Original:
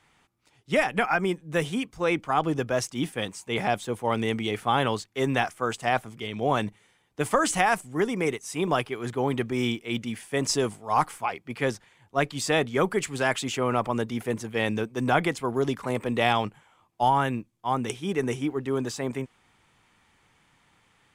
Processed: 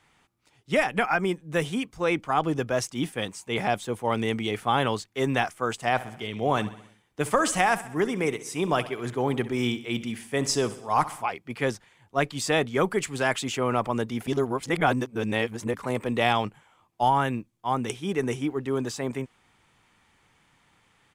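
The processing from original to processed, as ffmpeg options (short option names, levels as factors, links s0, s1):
-filter_complex "[0:a]asplit=3[s0][s1][s2];[s0]afade=t=out:st=5.94:d=0.02[s3];[s1]aecho=1:1:65|130|195|260|325:0.158|0.0888|0.0497|0.0278|0.0156,afade=t=in:st=5.94:d=0.02,afade=t=out:st=11.21:d=0.02[s4];[s2]afade=t=in:st=11.21:d=0.02[s5];[s3][s4][s5]amix=inputs=3:normalize=0,asplit=3[s6][s7][s8];[s6]atrim=end=14.272[s9];[s7]atrim=start=14.268:end=15.742,asetpts=PTS-STARTPTS,areverse[s10];[s8]atrim=start=15.738[s11];[s9][s10]acrossfade=d=0.004:c1=hsin:c2=hsin[s12];[s12][s11]acrossfade=d=0.004:c1=hsin:c2=hsin"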